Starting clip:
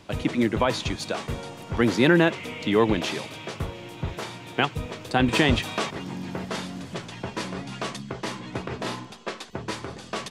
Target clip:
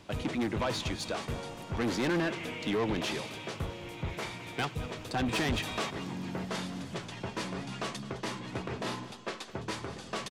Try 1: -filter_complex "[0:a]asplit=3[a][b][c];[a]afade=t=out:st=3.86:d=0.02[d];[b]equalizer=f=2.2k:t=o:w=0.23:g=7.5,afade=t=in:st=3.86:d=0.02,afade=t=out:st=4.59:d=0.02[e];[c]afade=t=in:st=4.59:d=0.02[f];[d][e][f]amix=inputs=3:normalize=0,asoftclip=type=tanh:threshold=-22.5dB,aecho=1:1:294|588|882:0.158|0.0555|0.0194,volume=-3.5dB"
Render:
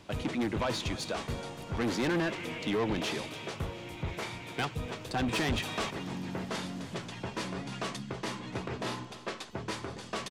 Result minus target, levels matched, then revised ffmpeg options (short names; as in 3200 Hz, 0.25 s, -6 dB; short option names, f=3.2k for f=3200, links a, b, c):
echo 83 ms late
-filter_complex "[0:a]asplit=3[a][b][c];[a]afade=t=out:st=3.86:d=0.02[d];[b]equalizer=f=2.2k:t=o:w=0.23:g=7.5,afade=t=in:st=3.86:d=0.02,afade=t=out:st=4.59:d=0.02[e];[c]afade=t=in:st=4.59:d=0.02[f];[d][e][f]amix=inputs=3:normalize=0,asoftclip=type=tanh:threshold=-22.5dB,aecho=1:1:211|422|633:0.158|0.0555|0.0194,volume=-3.5dB"